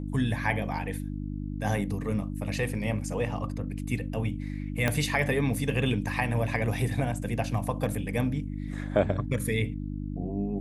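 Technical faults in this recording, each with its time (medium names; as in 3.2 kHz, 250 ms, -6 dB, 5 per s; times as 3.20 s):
hum 50 Hz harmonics 6 -34 dBFS
4.88 s: pop -11 dBFS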